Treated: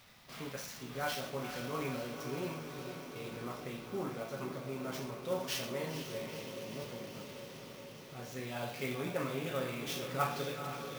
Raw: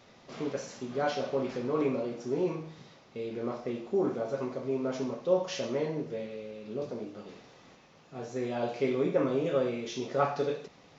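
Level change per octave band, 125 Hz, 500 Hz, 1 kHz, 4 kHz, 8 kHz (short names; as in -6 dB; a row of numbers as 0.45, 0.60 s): -2.0 dB, -9.5 dB, -4.0 dB, +2.0 dB, n/a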